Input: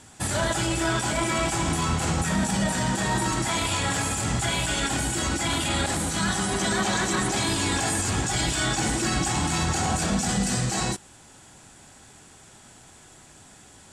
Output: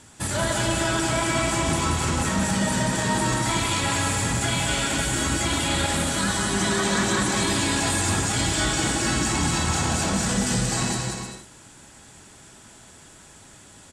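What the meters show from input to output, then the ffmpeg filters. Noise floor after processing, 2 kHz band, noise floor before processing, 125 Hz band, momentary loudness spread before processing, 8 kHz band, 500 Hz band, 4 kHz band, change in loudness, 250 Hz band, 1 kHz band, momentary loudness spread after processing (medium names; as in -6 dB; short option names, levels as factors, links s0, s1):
-49 dBFS, +2.0 dB, -51 dBFS, +1.5 dB, 2 LU, +2.0 dB, +2.0 dB, +2.0 dB, +2.0 dB, +2.0 dB, +1.0 dB, 2 LU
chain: -af "bandreject=f=750:w=12,aecho=1:1:180|306|394.2|455.9|499.2:0.631|0.398|0.251|0.158|0.1"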